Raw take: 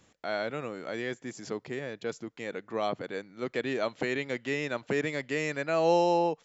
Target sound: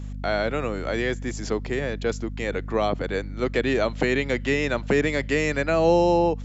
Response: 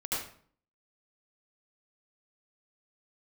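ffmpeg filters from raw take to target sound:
-filter_complex "[0:a]acrossover=split=440[a][b];[b]acompressor=threshold=-31dB:ratio=4[c];[a][c]amix=inputs=2:normalize=0,aeval=exprs='val(0)+0.00891*(sin(2*PI*50*n/s)+sin(2*PI*2*50*n/s)/2+sin(2*PI*3*50*n/s)/3+sin(2*PI*4*50*n/s)/4+sin(2*PI*5*50*n/s)/5)':c=same,volume=9dB"

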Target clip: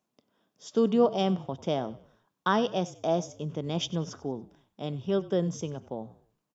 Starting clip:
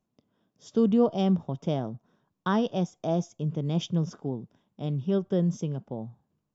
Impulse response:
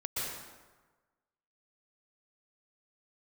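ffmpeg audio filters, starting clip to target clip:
-filter_complex "[0:a]highpass=f=510:p=1,asplit=2[a][b];[b]asplit=3[c][d][e];[c]adelay=95,afreqshift=-36,volume=-19dB[f];[d]adelay=190,afreqshift=-72,volume=-27.2dB[g];[e]adelay=285,afreqshift=-108,volume=-35.4dB[h];[f][g][h]amix=inputs=3:normalize=0[i];[a][i]amix=inputs=2:normalize=0,volume=4.5dB"

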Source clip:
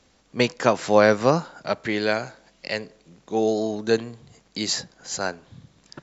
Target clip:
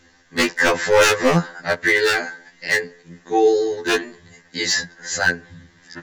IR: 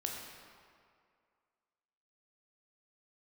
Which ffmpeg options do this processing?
-af "superequalizer=8b=0.631:11b=3.98,aeval=exprs='0.251*(abs(mod(val(0)/0.251+3,4)-2)-1)':c=same,afftfilt=real='re*2*eq(mod(b,4),0)':imag='im*2*eq(mod(b,4),0)':win_size=2048:overlap=0.75,volume=7dB"

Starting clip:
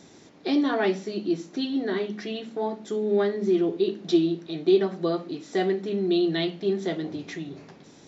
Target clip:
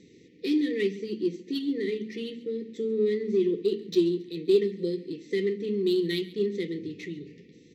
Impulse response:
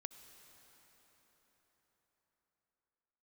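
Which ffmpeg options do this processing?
-filter_complex "[0:a]afftfilt=real='re*(1-between(b*sr/4096,500,1700))':imag='im*(1-between(b*sr/4096,500,1700))':win_size=4096:overlap=0.75,asetrate=45938,aresample=44100,adynamicsmooth=sensitivity=5.5:basefreq=4.1k,asplit=2[a][b];[b]aecho=0:1:137|274|411:0.106|0.0392|0.0145[c];[a][c]amix=inputs=2:normalize=0,volume=-2dB"

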